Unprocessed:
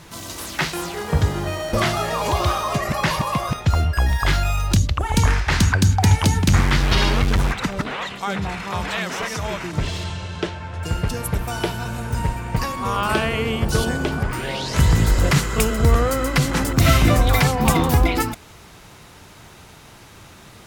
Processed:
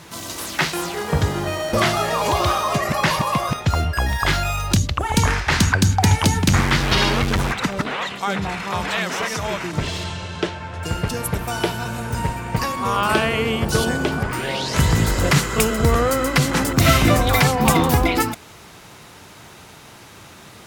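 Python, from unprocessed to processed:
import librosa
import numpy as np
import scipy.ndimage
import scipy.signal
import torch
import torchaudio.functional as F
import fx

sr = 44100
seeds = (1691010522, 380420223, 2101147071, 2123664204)

y = fx.highpass(x, sr, hz=120.0, slope=6)
y = F.gain(torch.from_numpy(y), 2.5).numpy()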